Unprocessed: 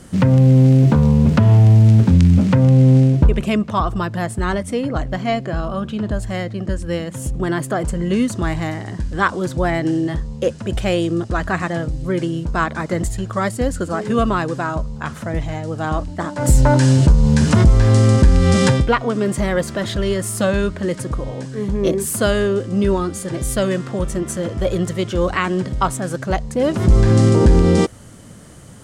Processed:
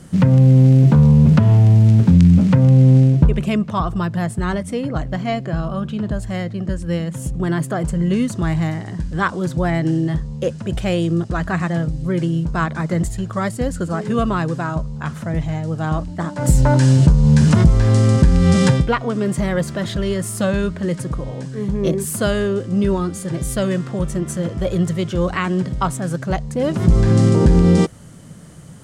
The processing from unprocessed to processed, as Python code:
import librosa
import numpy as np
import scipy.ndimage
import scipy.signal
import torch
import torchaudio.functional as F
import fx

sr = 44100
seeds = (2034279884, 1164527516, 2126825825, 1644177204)

y = fx.peak_eq(x, sr, hz=160.0, db=9.5, octaves=0.42)
y = F.gain(torch.from_numpy(y), -2.5).numpy()